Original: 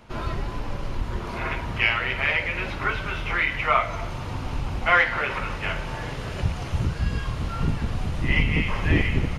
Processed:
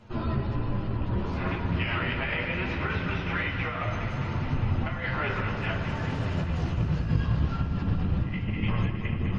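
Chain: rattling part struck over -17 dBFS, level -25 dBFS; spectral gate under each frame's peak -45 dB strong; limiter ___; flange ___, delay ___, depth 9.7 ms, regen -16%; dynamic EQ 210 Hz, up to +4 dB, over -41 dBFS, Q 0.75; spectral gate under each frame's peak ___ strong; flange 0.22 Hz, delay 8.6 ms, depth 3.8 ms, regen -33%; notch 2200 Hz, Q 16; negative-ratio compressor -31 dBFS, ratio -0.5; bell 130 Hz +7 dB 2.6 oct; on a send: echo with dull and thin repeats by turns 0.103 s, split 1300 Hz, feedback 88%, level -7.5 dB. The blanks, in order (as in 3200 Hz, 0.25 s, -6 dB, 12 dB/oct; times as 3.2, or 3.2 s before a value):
-9.5 dBFS, 0.64 Hz, 9.8 ms, -40 dB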